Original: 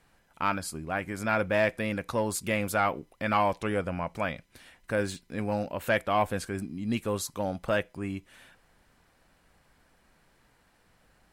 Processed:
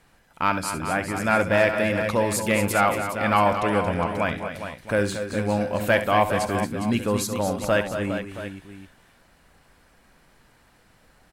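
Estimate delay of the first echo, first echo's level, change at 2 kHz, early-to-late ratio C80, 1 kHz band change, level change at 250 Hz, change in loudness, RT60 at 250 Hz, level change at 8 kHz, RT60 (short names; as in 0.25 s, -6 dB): 68 ms, -12.0 dB, +7.0 dB, none, +7.0 dB, +7.0 dB, +6.5 dB, none, +7.0 dB, none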